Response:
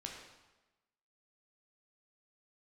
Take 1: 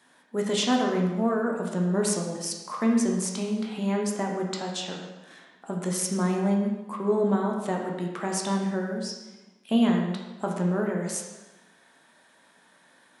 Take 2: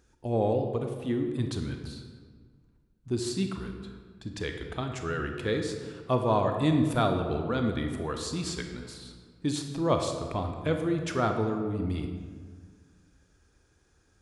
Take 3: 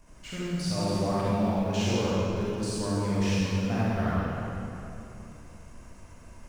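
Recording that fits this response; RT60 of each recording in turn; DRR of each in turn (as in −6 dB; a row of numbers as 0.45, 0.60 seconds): 1; 1.1, 1.7, 3.0 seconds; −0.5, 4.5, −9.0 decibels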